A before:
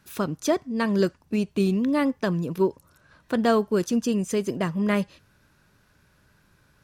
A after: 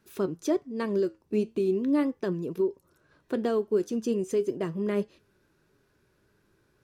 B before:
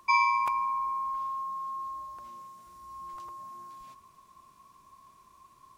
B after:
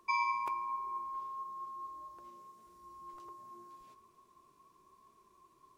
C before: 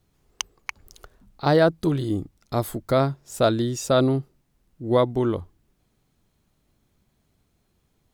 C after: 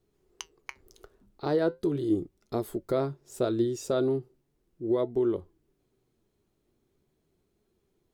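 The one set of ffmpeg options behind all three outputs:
-af "equalizer=f=380:w=2:g=13.5,alimiter=limit=0.355:level=0:latency=1:release=250,flanger=delay=4.3:depth=5.5:regen=76:speed=0.39:shape=triangular,volume=0.596"

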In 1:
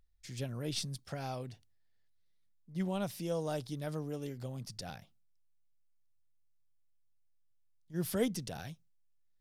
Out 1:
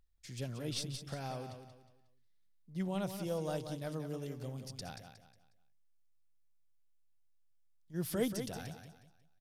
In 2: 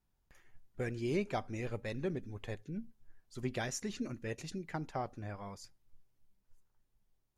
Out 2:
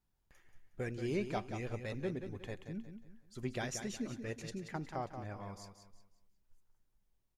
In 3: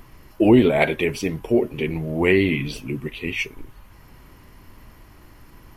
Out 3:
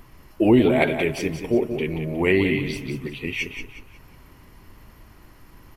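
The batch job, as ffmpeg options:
-af "aecho=1:1:181|362|543|724:0.376|0.128|0.0434|0.0148,volume=0.794"

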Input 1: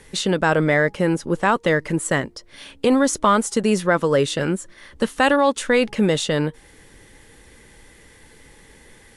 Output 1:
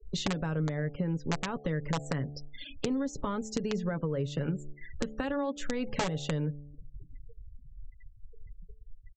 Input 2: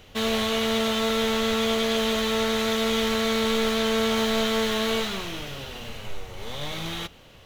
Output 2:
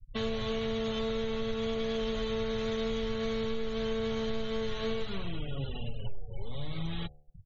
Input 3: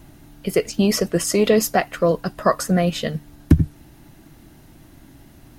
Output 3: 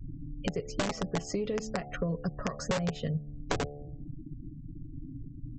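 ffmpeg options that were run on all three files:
-filter_complex "[0:a]afftfilt=real='re*gte(hypot(re,im),0.0224)':imag='im*gte(hypot(re,im),0.0224)':win_size=1024:overlap=0.75,alimiter=limit=0.335:level=0:latency=1:release=177,lowshelf=f=290:g=7.5,acrossover=split=200[s0][s1];[s1]acompressor=threshold=0.00447:ratio=1.5[s2];[s0][s2]amix=inputs=2:normalize=0,aresample=16000,aeval=exprs='(mod(4.73*val(0)+1,2)-1)/4.73':c=same,aresample=44100,aecho=1:1:7.1:0.38,bandreject=f=72.59:t=h:w=4,bandreject=f=145.18:t=h:w=4,bandreject=f=217.77:t=h:w=4,bandreject=f=290.36:t=h:w=4,bandreject=f=362.95:t=h:w=4,bandreject=f=435.54:t=h:w=4,bandreject=f=508.13:t=h:w=4,bandreject=f=580.72:t=h:w=4,bandreject=f=653.31:t=h:w=4,bandreject=f=725.9:t=h:w=4,bandreject=f=798.49:t=h:w=4,adynamicequalizer=threshold=0.00794:dfrequency=480:dqfactor=4.2:tfrequency=480:tqfactor=4.2:attack=5:release=100:ratio=0.375:range=2.5:mode=boostabove:tftype=bell,acompressor=threshold=0.0355:ratio=6"

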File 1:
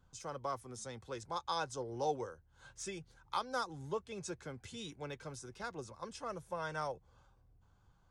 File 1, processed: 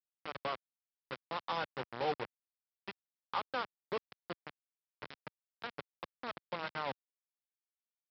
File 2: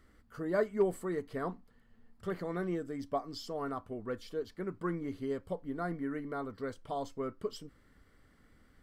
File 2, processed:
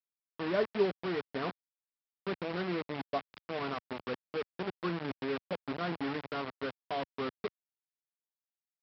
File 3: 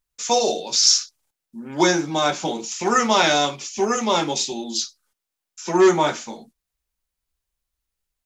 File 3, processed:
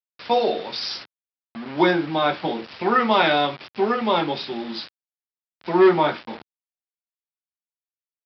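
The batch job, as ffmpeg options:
-af "aresample=11025,acrusher=bits=5:mix=0:aa=0.000001,aresample=44100,highpass=100,lowpass=3400"

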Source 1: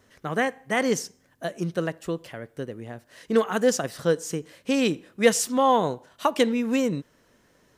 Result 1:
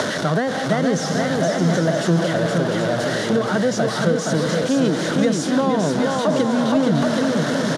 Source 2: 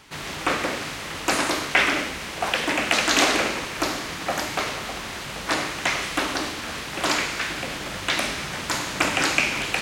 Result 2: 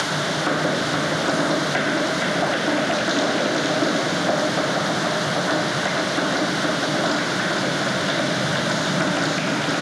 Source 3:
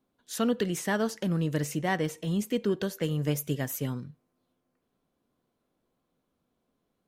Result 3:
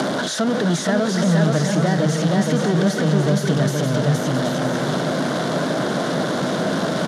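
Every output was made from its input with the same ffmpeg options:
-filter_complex "[0:a]aeval=exprs='val(0)+0.5*0.126*sgn(val(0))':c=same,asplit=2[s0][s1];[s1]aecho=0:1:470|775.5|974.1|1103|1187:0.631|0.398|0.251|0.158|0.1[s2];[s0][s2]amix=inputs=2:normalize=0,acrossover=split=240[s3][s4];[s4]acompressor=threshold=0.0251:ratio=6[s5];[s3][s5]amix=inputs=2:normalize=0,highpass=f=160:w=0.5412,highpass=f=160:w=1.3066,equalizer=f=230:t=q:w=4:g=-5,equalizer=f=620:t=q:w=4:g=10,equalizer=f=1500:t=q:w=4:g=7,equalizer=f=2500:t=q:w=4:g=-9,equalizer=f=3600:t=q:w=4:g=4,equalizer=f=7900:t=q:w=4:g=-7,lowpass=f=8600:w=0.5412,lowpass=f=8600:w=1.3066,volume=2.51"

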